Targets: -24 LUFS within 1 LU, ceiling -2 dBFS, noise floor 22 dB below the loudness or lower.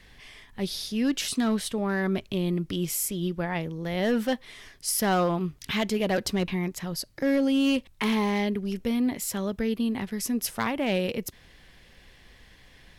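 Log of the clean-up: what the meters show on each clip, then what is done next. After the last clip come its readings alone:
clipped samples 0.7%; clipping level -18.0 dBFS; dropouts 1; longest dropout 3.3 ms; loudness -27.5 LUFS; peak level -18.0 dBFS; loudness target -24.0 LUFS
-> clip repair -18 dBFS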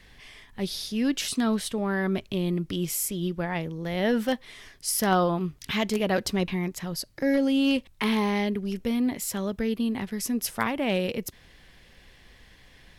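clipped samples 0.0%; dropouts 1; longest dropout 3.3 ms
-> interpolate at 7.22 s, 3.3 ms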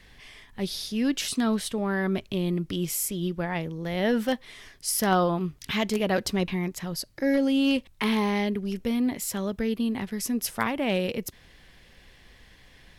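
dropouts 0; loudness -27.5 LUFS; peak level -9.0 dBFS; loudness target -24.0 LUFS
-> trim +3.5 dB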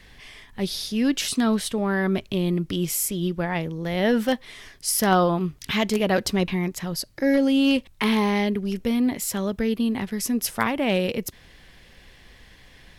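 loudness -24.0 LUFS; peak level -5.5 dBFS; noise floor -52 dBFS

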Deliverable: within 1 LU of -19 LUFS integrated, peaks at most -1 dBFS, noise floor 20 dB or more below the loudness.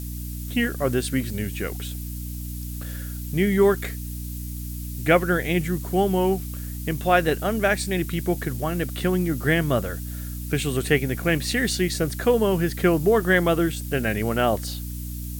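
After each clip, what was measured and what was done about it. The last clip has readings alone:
hum 60 Hz; highest harmonic 300 Hz; hum level -30 dBFS; noise floor -32 dBFS; noise floor target -44 dBFS; loudness -24.0 LUFS; peak level -6.0 dBFS; loudness target -19.0 LUFS
-> de-hum 60 Hz, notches 5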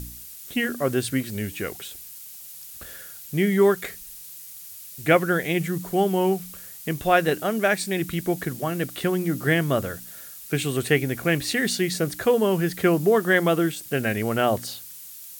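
hum not found; noise floor -42 dBFS; noise floor target -44 dBFS
-> noise reduction 6 dB, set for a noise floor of -42 dBFS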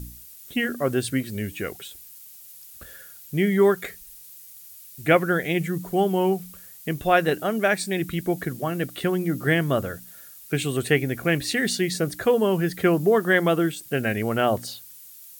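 noise floor -46 dBFS; loudness -23.5 LUFS; peak level -6.0 dBFS; loudness target -19.0 LUFS
-> trim +4.5 dB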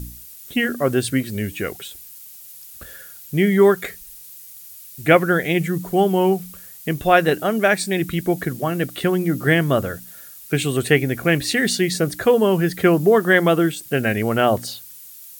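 loudness -19.0 LUFS; peak level -1.5 dBFS; noise floor -41 dBFS

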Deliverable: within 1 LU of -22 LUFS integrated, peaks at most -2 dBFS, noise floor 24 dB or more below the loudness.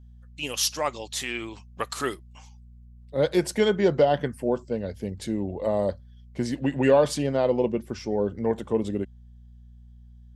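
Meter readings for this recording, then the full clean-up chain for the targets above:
hum 60 Hz; highest harmonic 240 Hz; hum level -45 dBFS; loudness -26.0 LUFS; peak level -8.0 dBFS; loudness target -22.0 LUFS
-> de-hum 60 Hz, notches 4; trim +4 dB

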